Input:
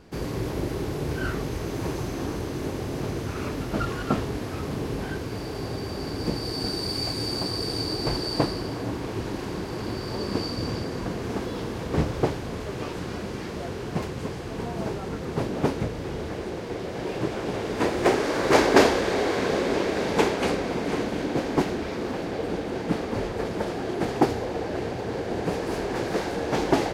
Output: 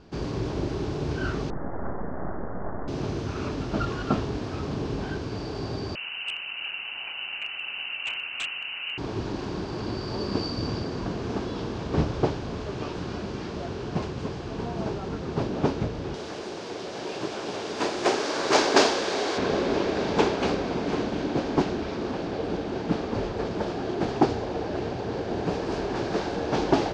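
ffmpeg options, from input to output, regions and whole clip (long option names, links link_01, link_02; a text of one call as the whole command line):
ffmpeg -i in.wav -filter_complex "[0:a]asettb=1/sr,asplit=3[link_01][link_02][link_03];[link_01]atrim=end=1.504[link_04];[link_02]atrim=start=1.5:end=2.88,asetpts=PTS-STARTPTS,afade=type=in:duration=0.004:curve=qsin,afade=type=out:start_time=1.376:duration=0.004:curve=qsin,aemphasis=mode=reproduction:type=75fm,aeval=exprs='abs(val(0))':channel_layout=same,asuperstop=centerf=4600:order=20:qfactor=0.6[link_05];[link_03]atrim=start=2.876[link_06];[link_04][link_05]acrossfade=duration=0.004:curve1=hsin:curve2=qsin[link_07];[link_07][link_06]acrossfade=duration=0.004:curve1=qsin:curve2=hsin,asettb=1/sr,asplit=3[link_08][link_09][link_10];[link_08]atrim=end=5.954[link_11];[link_09]atrim=start=5.95:end=8.98,asetpts=PTS-STARTPTS,afade=type=in:duration=0.004:curve=qsin,afade=type=out:start_time=3.026:duration=0.004:curve=qsin,highpass=frequency=220:poles=1,lowpass=frequency=2600:width_type=q:width=0.5098,lowpass=frequency=2600:width_type=q:width=0.6013,lowpass=frequency=2600:width_type=q:width=0.9,lowpass=frequency=2600:width_type=q:width=2.563,afreqshift=-3100,aeval=exprs='0.075*(abs(mod(val(0)/0.075+3,4)-2)-1)':channel_layout=same[link_12];[link_10]atrim=start=8.976[link_13];[link_11][link_12]acrossfade=duration=0.004:curve1=hsin:curve2=qsin[link_14];[link_14][link_13]acrossfade=duration=0.004:curve1=qsin:curve2=hsin,asettb=1/sr,asplit=3[link_15][link_16][link_17];[link_15]atrim=end=16.144[link_18];[link_16]atrim=start=16.14:end=19.38,asetpts=PTS-STARTPTS,afade=type=in:duration=0.004:curve=qsin,afade=type=out:start_time=3.236:duration=0.004:curve=qsin,aemphasis=mode=production:type=50fm,acompressor=mode=upward:threshold=-27dB:ratio=2.5:attack=3.2:release=140:knee=2.83:detection=peak,highpass=frequency=390:poles=1[link_19];[link_17]atrim=start=19.376[link_20];[link_18][link_19]acrossfade=duration=0.004:curve1=hsin:curve2=qsin[link_21];[link_21][link_20]acrossfade=duration=0.004:curve1=qsin:curve2=hsin,lowpass=frequency=6200:width=0.5412,lowpass=frequency=6200:width=1.3066,equalizer=frequency=2000:width_type=o:width=0.44:gain=-5.5,bandreject=frequency=500:width=14" out.wav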